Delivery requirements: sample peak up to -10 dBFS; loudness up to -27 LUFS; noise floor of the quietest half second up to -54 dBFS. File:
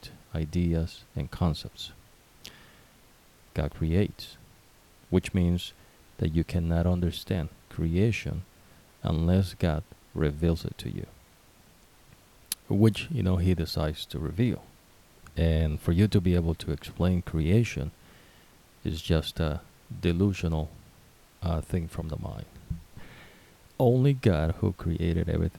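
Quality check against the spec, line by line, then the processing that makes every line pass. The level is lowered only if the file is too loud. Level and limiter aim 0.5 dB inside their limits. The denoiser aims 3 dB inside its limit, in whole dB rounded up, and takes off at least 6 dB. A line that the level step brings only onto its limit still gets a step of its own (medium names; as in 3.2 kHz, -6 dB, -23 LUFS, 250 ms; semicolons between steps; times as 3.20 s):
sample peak -7.5 dBFS: fail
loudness -28.5 LUFS: pass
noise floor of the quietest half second -57 dBFS: pass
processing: peak limiter -10.5 dBFS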